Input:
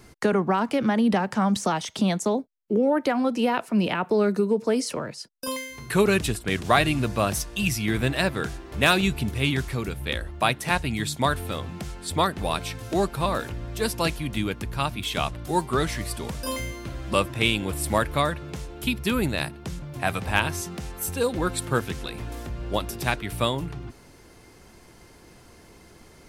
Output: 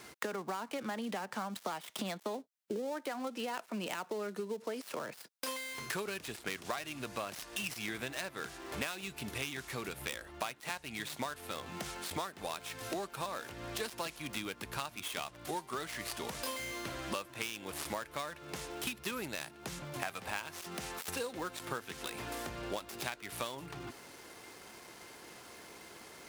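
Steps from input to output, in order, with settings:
gap after every zero crossing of 0.086 ms
high-pass filter 650 Hz 6 dB per octave
downward compressor 10 to 1, threshold −39 dBFS, peak gain reduction 23.5 dB
level +3.5 dB

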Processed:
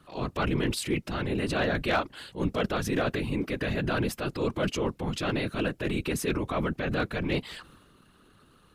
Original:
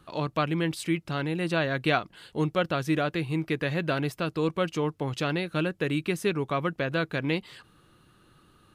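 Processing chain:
transient designer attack −6 dB, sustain +6 dB
random phases in short frames
hard clipping −18.5 dBFS, distortion −29 dB

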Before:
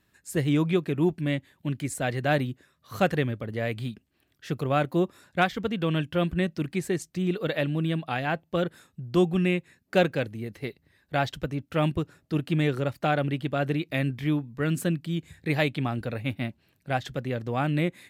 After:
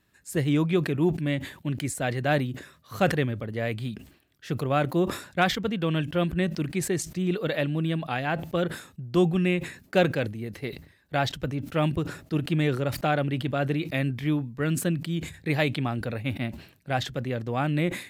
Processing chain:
level that may fall only so fast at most 110 dB per second

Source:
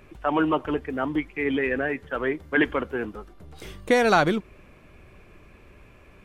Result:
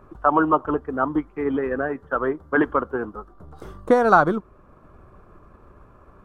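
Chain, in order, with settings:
transient designer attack +3 dB, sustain −3 dB
high shelf with overshoot 1,700 Hz −10.5 dB, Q 3
level +1 dB

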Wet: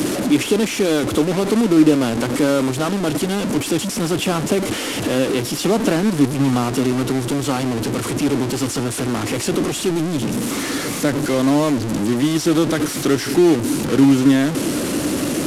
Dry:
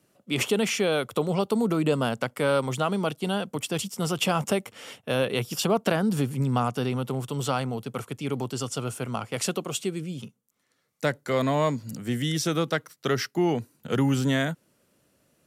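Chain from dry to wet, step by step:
linear delta modulator 64 kbit/s, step −21 dBFS
parametric band 300 Hz +14 dB 0.76 octaves
level +1.5 dB

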